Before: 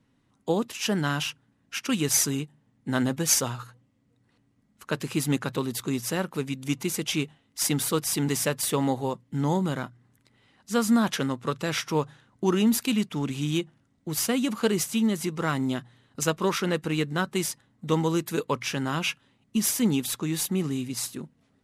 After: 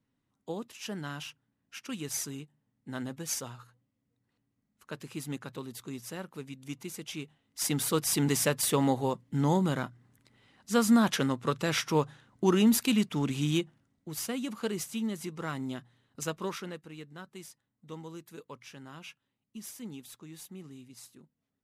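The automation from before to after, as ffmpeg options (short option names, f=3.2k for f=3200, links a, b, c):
-af "volume=-1dB,afade=t=in:st=7.22:d=0.91:silence=0.281838,afade=t=out:st=13.49:d=0.61:silence=0.398107,afade=t=out:st=16.41:d=0.43:silence=0.316228"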